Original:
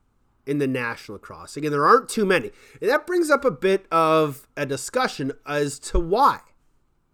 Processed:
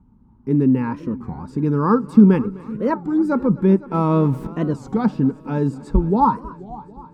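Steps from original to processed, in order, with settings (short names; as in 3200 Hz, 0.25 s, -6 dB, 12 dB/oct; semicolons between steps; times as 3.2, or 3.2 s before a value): 3.94–4.47 zero-crossing step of -28.5 dBFS; HPF 42 Hz; tilt -4 dB/oct; in parallel at 0 dB: compressor, threshold -29 dBFS, peak gain reduction 24 dB; on the sum: small resonant body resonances 210/900 Hz, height 18 dB, ringing for 40 ms; on a send: multi-head echo 0.255 s, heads first and second, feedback 57%, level -22 dB; on the sum: record warp 33 1/3 rpm, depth 250 cents; gain -11 dB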